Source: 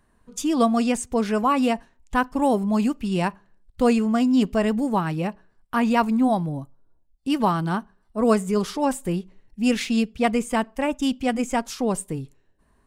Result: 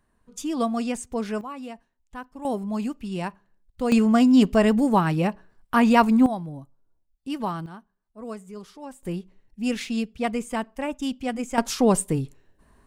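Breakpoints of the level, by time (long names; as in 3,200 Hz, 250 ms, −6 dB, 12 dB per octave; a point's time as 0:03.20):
−5.5 dB
from 0:01.41 −16 dB
from 0:02.45 −6.5 dB
from 0:03.92 +3 dB
from 0:06.26 −7.5 dB
from 0:07.66 −17 dB
from 0:09.03 −5 dB
from 0:11.58 +5 dB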